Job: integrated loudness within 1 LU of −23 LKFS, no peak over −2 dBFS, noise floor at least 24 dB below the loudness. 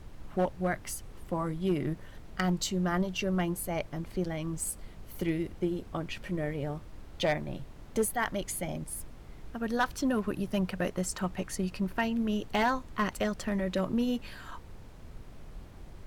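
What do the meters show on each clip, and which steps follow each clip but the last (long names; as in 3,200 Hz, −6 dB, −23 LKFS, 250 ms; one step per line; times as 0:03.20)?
share of clipped samples 0.3%; peaks flattened at −20.5 dBFS; background noise floor −49 dBFS; target noise floor −57 dBFS; integrated loudness −32.5 LKFS; sample peak −20.5 dBFS; target loudness −23.0 LKFS
→ clipped peaks rebuilt −20.5 dBFS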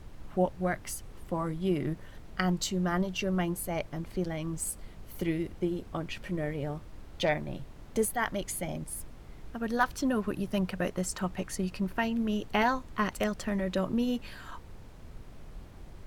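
share of clipped samples 0.0%; background noise floor −49 dBFS; target noise floor −57 dBFS
→ noise reduction from a noise print 8 dB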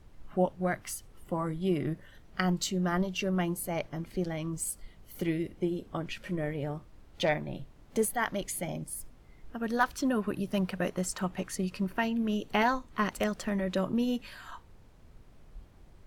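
background noise floor −56 dBFS; target noise floor −57 dBFS
→ noise reduction from a noise print 6 dB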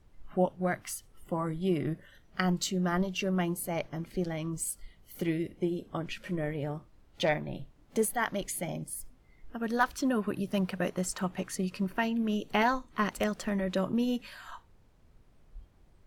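background noise floor −62 dBFS; integrated loudness −32.5 LKFS; sample peak −12.0 dBFS; target loudness −23.0 LKFS
→ level +9.5 dB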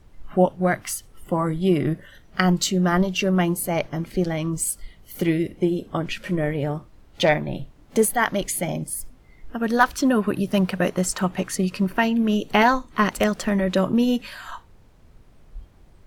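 integrated loudness −23.0 LKFS; sample peak −2.5 dBFS; background noise floor −52 dBFS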